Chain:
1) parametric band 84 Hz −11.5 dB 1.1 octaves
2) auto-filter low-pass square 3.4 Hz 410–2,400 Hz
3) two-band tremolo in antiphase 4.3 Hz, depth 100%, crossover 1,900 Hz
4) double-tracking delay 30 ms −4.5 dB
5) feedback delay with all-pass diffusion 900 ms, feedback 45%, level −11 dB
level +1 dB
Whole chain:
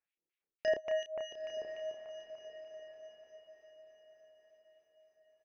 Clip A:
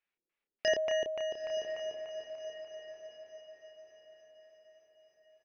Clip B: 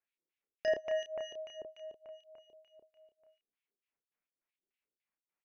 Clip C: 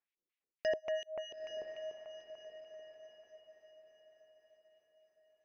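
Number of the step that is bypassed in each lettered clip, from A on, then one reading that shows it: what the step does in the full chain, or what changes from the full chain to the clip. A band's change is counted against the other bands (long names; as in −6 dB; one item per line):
3, change in momentary loudness spread −3 LU
5, echo-to-direct ratio −10.0 dB to none audible
4, 4 kHz band +2.0 dB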